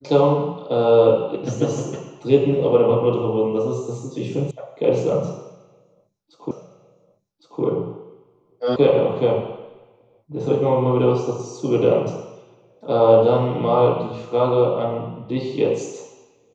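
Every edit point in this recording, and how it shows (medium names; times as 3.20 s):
4.51 s: sound stops dead
6.51 s: repeat of the last 1.11 s
8.76 s: sound stops dead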